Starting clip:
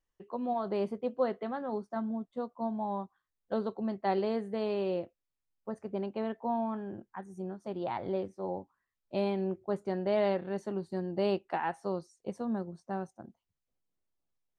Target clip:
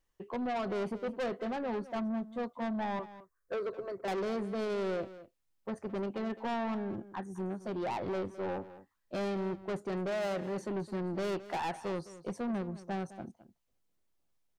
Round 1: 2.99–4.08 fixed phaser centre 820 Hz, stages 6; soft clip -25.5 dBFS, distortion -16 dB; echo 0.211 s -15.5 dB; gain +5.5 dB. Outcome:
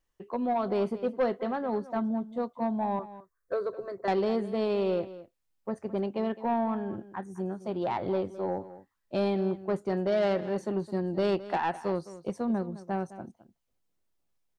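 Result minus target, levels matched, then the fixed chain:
soft clip: distortion -10 dB
2.99–4.08 fixed phaser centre 820 Hz, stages 6; soft clip -37 dBFS, distortion -6 dB; echo 0.211 s -15.5 dB; gain +5.5 dB

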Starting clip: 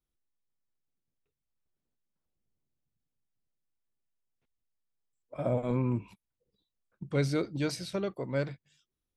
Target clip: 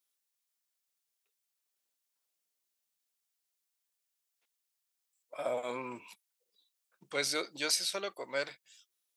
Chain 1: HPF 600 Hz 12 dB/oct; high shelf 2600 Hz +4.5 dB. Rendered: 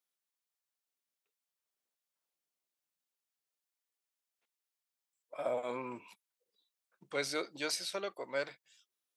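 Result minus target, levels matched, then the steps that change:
4000 Hz band -2.5 dB
change: high shelf 2600 Hz +12.5 dB

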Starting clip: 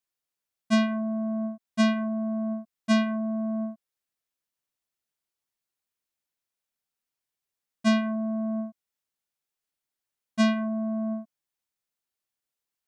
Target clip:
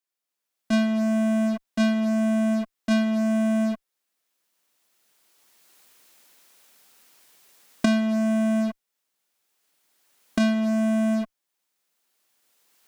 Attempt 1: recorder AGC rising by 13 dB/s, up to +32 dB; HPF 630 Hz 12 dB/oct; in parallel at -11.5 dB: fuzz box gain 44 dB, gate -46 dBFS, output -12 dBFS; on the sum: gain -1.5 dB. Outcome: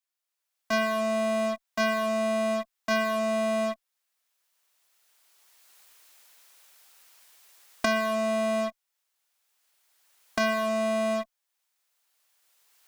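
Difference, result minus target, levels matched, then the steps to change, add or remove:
250 Hz band -7.0 dB
change: HPF 210 Hz 12 dB/oct

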